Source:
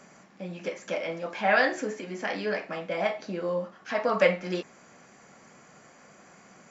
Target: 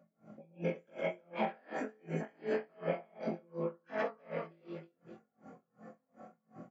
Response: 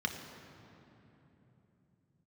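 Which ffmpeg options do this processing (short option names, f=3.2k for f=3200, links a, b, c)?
-filter_complex "[0:a]afftfilt=real='re':imag='-im':win_size=2048:overlap=0.75,afftdn=nr=19:nf=-51,lowpass=f=1.1k:p=1,equalizer=f=180:w=4.9:g=-3.5,acompressor=threshold=-45dB:ratio=12,asplit=2[a][b];[b]aecho=0:1:42|111|169|315|354|562:0.562|0.596|0.316|0.422|0.2|0.106[c];[a][c]amix=inputs=2:normalize=0,aeval=exprs='val(0)*pow(10,-34*(0.5-0.5*cos(2*PI*2.7*n/s))/20)':c=same,volume=14dB"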